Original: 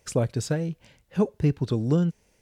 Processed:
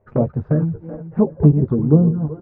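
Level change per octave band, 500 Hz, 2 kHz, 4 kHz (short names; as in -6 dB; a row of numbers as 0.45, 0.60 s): +6.5 dB, n/a, under -25 dB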